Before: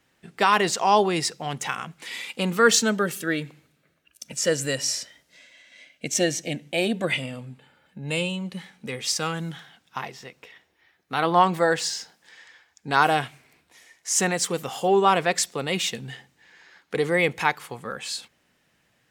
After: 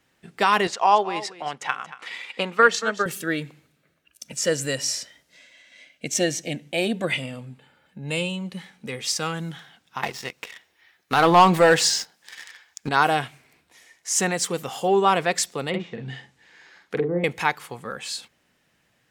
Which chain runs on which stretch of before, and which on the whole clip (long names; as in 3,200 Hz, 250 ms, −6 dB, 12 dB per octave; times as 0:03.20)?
0:00.67–0:03.06: transient designer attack +7 dB, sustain −4 dB + resonant band-pass 1,200 Hz, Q 0.54 + single-tap delay 230 ms −15 dB
0:10.03–0:12.89: leveller curve on the samples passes 2 + one half of a high-frequency compander encoder only
0:15.69–0:17.24: treble cut that deepens with the level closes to 470 Hz, closed at −20.5 dBFS + double-tracking delay 46 ms −4.5 dB
whole clip: no processing